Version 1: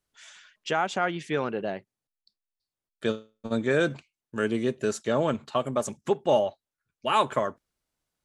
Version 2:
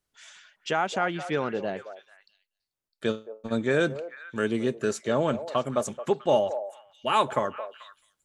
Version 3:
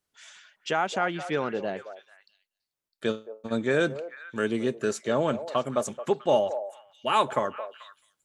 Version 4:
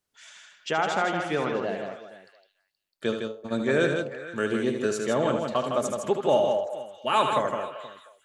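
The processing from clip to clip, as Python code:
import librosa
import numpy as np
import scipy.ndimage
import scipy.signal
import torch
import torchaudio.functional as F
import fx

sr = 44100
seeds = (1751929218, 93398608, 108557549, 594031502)

y1 = fx.echo_stepped(x, sr, ms=219, hz=620.0, octaves=1.4, feedback_pct=70, wet_db=-9.5)
y2 = fx.low_shelf(y1, sr, hz=65.0, db=-11.0)
y3 = fx.echo_multitap(y2, sr, ms=(76, 159, 474), db=(-7.5, -5.5, -18.5))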